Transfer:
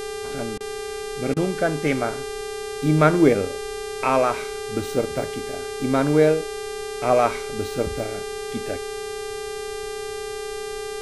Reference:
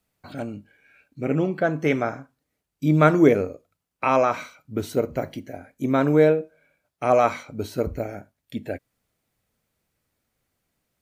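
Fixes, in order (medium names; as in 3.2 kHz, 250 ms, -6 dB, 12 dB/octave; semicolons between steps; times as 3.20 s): de-hum 397.5 Hz, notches 29; band-stop 430 Hz, Q 30; interpolate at 0.58/1.34 s, 24 ms; noise reduction 30 dB, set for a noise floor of -32 dBFS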